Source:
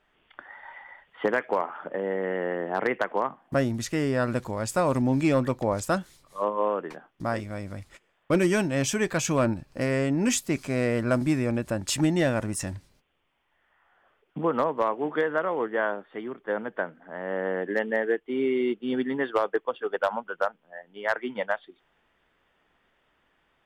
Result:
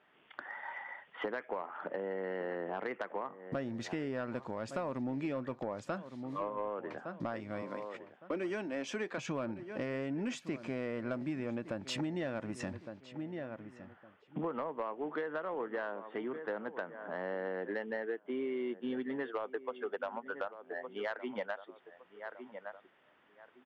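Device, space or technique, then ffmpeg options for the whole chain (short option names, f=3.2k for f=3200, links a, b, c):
AM radio: -filter_complex "[0:a]asettb=1/sr,asplit=3[a][b][c];[a]atrim=end=7.624[d];[b]atrim=start=7.62:end=9.18,asetpts=PTS-STARTPTS,afade=t=in:d=0.004:c=qsin,afade=t=out:st=1.556:d=0.004:c=qsin,highpass=f=220:w=0.5412,highpass=f=220:w=1.3066[e];[c]atrim=start=9.176[f];[d][e]acrossfade=d=0.004:c1=hsin:c2=qsin[g];[g][f]acrossfade=d=0.004:c1=qsin:c2=hsin,highpass=160,lowpass=3.3k,asplit=2[h][i];[i]adelay=1161,lowpass=f=2.2k:p=1,volume=-18dB,asplit=2[j][k];[k]adelay=1161,lowpass=f=2.2k:p=1,volume=0.22[l];[h][j][l]amix=inputs=3:normalize=0,acompressor=threshold=-36dB:ratio=5,asoftclip=type=tanh:threshold=-27dB,volume=1.5dB"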